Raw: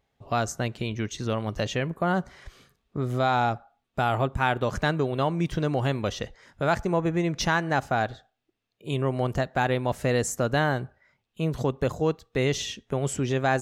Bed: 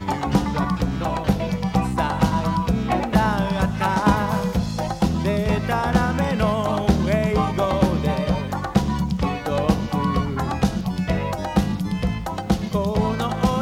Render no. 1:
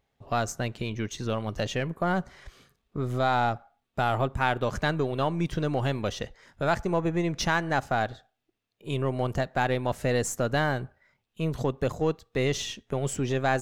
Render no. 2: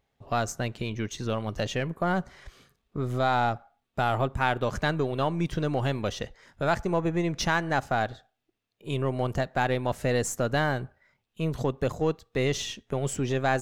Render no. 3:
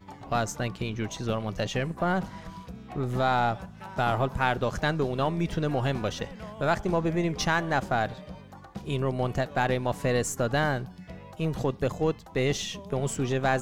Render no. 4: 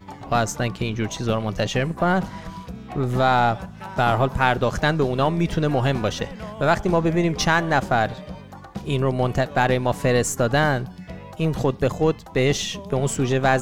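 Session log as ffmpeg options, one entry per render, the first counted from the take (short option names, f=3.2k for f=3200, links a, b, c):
-af "aeval=exprs='if(lt(val(0),0),0.708*val(0),val(0))':c=same"
-af anull
-filter_complex "[1:a]volume=-21dB[a];[0:a][a]amix=inputs=2:normalize=0"
-af "volume=6.5dB"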